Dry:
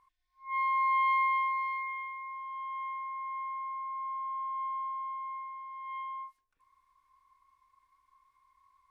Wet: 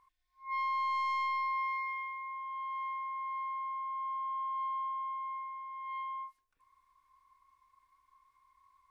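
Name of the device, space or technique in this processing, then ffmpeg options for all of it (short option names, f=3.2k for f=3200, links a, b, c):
soft clipper into limiter: -af "asoftclip=type=tanh:threshold=-24.5dB,alimiter=level_in=5dB:limit=-24dB:level=0:latency=1,volume=-5dB"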